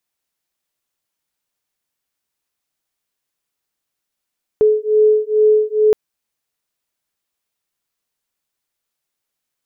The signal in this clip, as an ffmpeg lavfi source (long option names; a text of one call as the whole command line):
ffmpeg -f lavfi -i "aevalsrc='0.211*(sin(2*PI*427*t)+sin(2*PI*429.3*t))':duration=1.32:sample_rate=44100" out.wav